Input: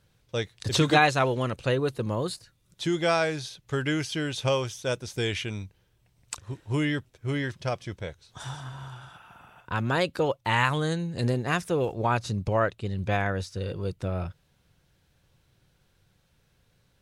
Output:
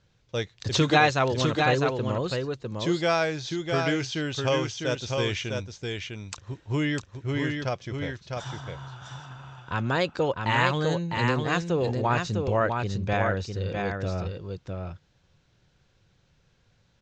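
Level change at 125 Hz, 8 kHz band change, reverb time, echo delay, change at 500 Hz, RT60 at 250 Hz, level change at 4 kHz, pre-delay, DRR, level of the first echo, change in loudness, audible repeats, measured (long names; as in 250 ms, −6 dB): +1.0 dB, −0.5 dB, no reverb audible, 653 ms, +1.5 dB, no reverb audible, +1.5 dB, no reverb audible, no reverb audible, −4.5 dB, +0.5 dB, 1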